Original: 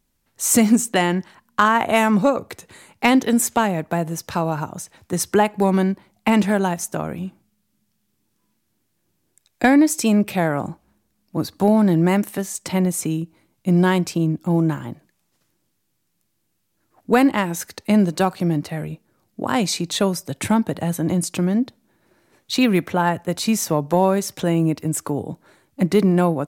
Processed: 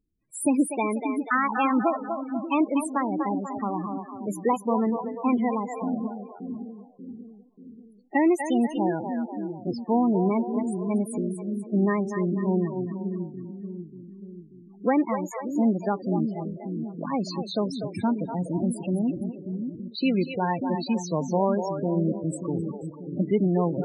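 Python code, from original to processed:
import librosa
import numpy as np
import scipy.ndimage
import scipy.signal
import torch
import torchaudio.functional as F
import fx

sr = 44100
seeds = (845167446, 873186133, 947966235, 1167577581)

y = fx.speed_glide(x, sr, from_pct=122, to_pct=100)
y = fx.echo_split(y, sr, split_hz=370.0, low_ms=586, high_ms=244, feedback_pct=52, wet_db=-6.0)
y = fx.spec_topn(y, sr, count=16)
y = y * librosa.db_to_amplitude(-6.5)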